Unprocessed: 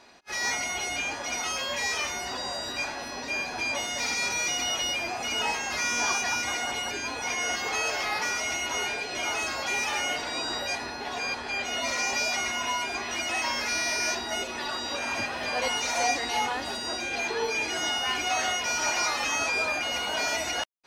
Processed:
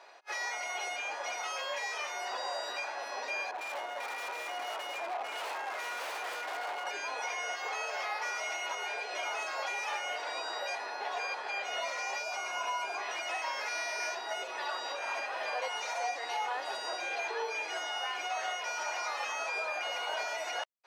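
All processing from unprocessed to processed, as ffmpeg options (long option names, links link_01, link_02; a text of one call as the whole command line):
ffmpeg -i in.wav -filter_complex "[0:a]asettb=1/sr,asplit=3[link_01][link_02][link_03];[link_01]atrim=end=3.514[link_04];[link_02]atrim=start=3.51:end=6.87,asetpts=PTS-STARTPTS,afade=type=in:duration=0.004:curve=qsin,afade=type=out:start_time=3.356:duration=0.004:curve=qsin,equalizer=frequency=480:width=6.8:gain=-7.5,adynamicsmooth=sensitivity=2.5:basefreq=700,aeval=exprs='0.0251*(abs(mod(val(0)/0.0251+3,4)-2)-1)':channel_layout=same[link_05];[link_03]atrim=start=6.866[link_06];[link_04][link_05]acrossfade=duration=0.004:curve1=hsin:curve2=qsin[link_07];[link_07][link_06]acrossfade=duration=0.004:curve1=qsin:curve2=hsin,asettb=1/sr,asplit=3[link_08][link_09][link_10];[link_08]atrim=end=12.234[link_11];[link_09]atrim=start=12.23:end=12.99,asetpts=PTS-STARTPTS,afade=type=in:duration=0.004:curve=qsin,afade=type=out:start_time=0.756:duration=0.004:curve=qsin,equalizer=frequency=3500:width=3.8:gain=-6,bandreject=frequency=1900:width=5.2,aeval=exprs='val(0)+0.00398*(sin(2*PI*60*n/s)+sin(2*PI*2*60*n/s)/2+sin(2*PI*3*60*n/s)/3+sin(2*PI*4*60*n/s)/4+sin(2*PI*5*60*n/s)/5)':channel_layout=same[link_12];[link_10]atrim=start=12.986[link_13];[link_11][link_12]acrossfade=duration=0.004:curve1=hsin:curve2=qsin[link_14];[link_14][link_13]acrossfade=duration=0.004:curve1=qsin:curve2=hsin,alimiter=level_in=1dB:limit=-24dB:level=0:latency=1:release=461,volume=-1dB,highpass=frequency=500:width=0.5412,highpass=frequency=500:width=1.3066,highshelf=frequency=2700:gain=-11.5,volume=3dB" out.wav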